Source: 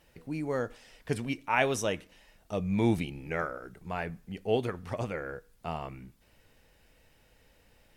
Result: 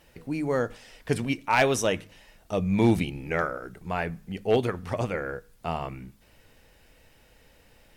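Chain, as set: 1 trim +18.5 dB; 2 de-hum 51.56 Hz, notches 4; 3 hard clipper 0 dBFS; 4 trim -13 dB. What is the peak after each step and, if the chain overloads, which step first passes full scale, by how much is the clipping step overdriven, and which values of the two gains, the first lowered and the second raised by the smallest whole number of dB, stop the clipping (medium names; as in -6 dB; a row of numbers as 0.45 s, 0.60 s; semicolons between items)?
+7.5 dBFS, +7.5 dBFS, 0.0 dBFS, -13.0 dBFS; step 1, 7.5 dB; step 1 +10.5 dB, step 4 -5 dB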